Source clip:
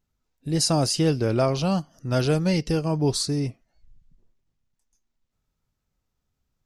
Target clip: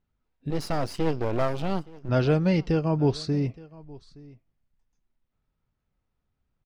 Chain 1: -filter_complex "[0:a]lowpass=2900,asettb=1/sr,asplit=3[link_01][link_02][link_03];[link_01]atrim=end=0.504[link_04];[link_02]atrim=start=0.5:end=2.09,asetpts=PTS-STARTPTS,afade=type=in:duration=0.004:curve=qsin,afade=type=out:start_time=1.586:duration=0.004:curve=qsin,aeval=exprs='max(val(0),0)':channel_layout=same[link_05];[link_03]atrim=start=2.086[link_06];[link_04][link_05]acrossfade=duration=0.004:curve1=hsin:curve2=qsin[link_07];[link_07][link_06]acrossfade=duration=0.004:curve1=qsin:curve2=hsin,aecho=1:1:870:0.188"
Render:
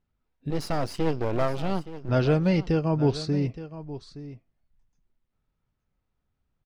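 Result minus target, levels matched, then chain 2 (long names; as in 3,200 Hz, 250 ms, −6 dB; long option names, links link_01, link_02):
echo-to-direct +7.5 dB
-filter_complex "[0:a]lowpass=2900,asettb=1/sr,asplit=3[link_01][link_02][link_03];[link_01]atrim=end=0.504[link_04];[link_02]atrim=start=0.5:end=2.09,asetpts=PTS-STARTPTS,afade=type=in:duration=0.004:curve=qsin,afade=type=out:start_time=1.586:duration=0.004:curve=qsin,aeval=exprs='max(val(0),0)':channel_layout=same[link_05];[link_03]atrim=start=2.086[link_06];[link_04][link_05]acrossfade=duration=0.004:curve1=hsin:curve2=qsin[link_07];[link_07][link_06]acrossfade=duration=0.004:curve1=qsin:curve2=hsin,aecho=1:1:870:0.0794"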